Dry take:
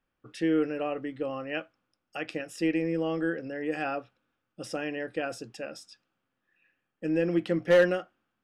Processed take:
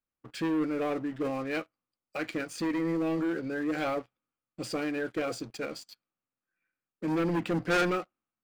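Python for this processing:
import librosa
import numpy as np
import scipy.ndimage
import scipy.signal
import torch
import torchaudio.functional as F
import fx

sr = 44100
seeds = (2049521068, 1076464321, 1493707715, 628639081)

y = fx.leveller(x, sr, passes=3)
y = fx.formant_shift(y, sr, semitones=-2)
y = y * librosa.db_to_amplitude(-8.0)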